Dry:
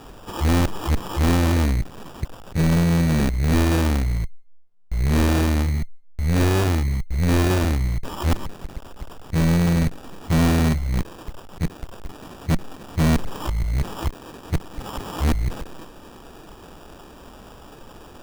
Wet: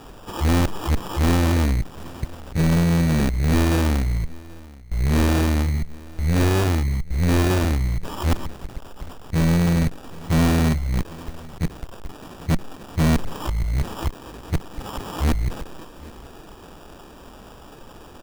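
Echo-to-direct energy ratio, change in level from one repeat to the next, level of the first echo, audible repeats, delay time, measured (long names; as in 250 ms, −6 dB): −22.5 dB, repeats not evenly spaced, −22.5 dB, 1, 781 ms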